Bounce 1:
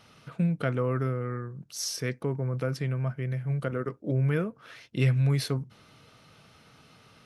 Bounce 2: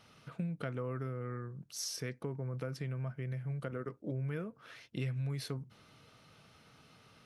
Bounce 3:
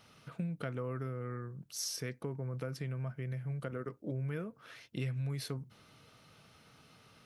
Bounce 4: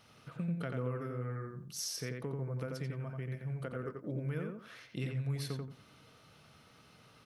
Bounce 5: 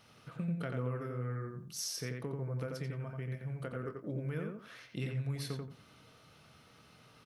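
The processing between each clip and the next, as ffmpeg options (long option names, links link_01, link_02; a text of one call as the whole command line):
ffmpeg -i in.wav -af "acompressor=threshold=-31dB:ratio=3,volume=-5dB" out.wav
ffmpeg -i in.wav -af "highshelf=frequency=9900:gain=5.5" out.wav
ffmpeg -i in.wav -filter_complex "[0:a]asplit=2[link_01][link_02];[link_02]adelay=88,lowpass=frequency=2800:poles=1,volume=-3dB,asplit=2[link_03][link_04];[link_04]adelay=88,lowpass=frequency=2800:poles=1,volume=0.21,asplit=2[link_05][link_06];[link_06]adelay=88,lowpass=frequency=2800:poles=1,volume=0.21[link_07];[link_01][link_03][link_05][link_07]amix=inputs=4:normalize=0,volume=-1dB" out.wav
ffmpeg -i in.wav -filter_complex "[0:a]asplit=2[link_01][link_02];[link_02]adelay=25,volume=-13dB[link_03];[link_01][link_03]amix=inputs=2:normalize=0" out.wav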